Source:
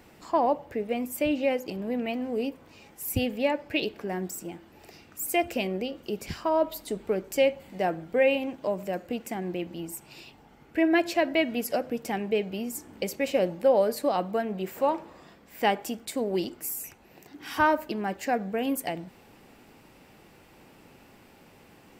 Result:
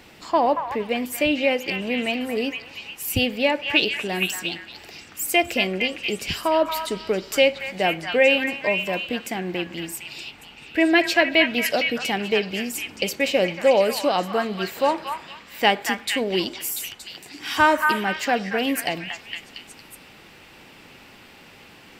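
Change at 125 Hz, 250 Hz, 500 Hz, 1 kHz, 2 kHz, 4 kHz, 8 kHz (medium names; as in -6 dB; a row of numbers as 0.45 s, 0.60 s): +3.5 dB, +3.5 dB, +4.0 dB, +5.5 dB, +11.5 dB, +13.5 dB, +6.5 dB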